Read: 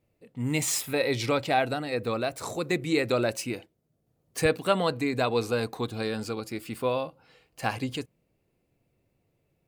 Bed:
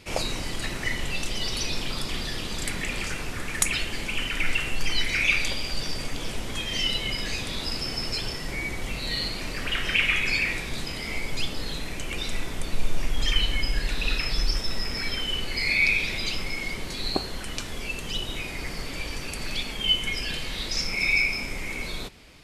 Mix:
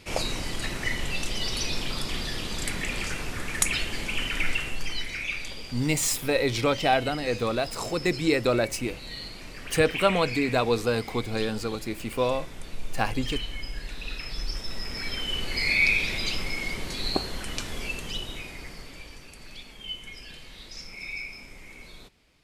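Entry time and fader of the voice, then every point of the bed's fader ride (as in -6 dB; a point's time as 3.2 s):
5.35 s, +2.0 dB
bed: 4.4 s -0.5 dB
5.25 s -9.5 dB
14.1 s -9.5 dB
15.55 s 0 dB
17.84 s 0 dB
19.3 s -13.5 dB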